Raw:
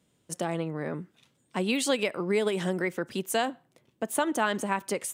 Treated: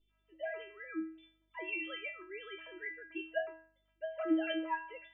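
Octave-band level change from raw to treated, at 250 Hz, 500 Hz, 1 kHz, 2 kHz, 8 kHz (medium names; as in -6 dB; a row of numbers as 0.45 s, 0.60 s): -8.0 dB, -11.5 dB, -12.0 dB, -7.5 dB, under -40 dB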